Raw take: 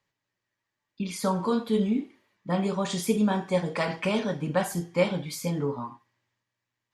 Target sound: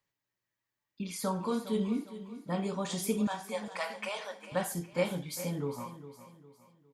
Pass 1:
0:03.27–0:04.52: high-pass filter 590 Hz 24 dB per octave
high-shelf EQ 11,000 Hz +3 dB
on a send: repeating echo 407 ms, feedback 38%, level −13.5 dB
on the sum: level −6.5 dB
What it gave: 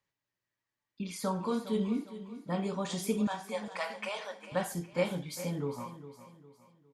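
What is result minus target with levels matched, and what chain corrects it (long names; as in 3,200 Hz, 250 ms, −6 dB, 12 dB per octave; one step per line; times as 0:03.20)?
8,000 Hz band −2.5 dB
0:03.27–0:04.52: high-pass filter 590 Hz 24 dB per octave
high-shelf EQ 11,000 Hz +12 dB
on a send: repeating echo 407 ms, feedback 38%, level −13.5 dB
on the sum: level −6.5 dB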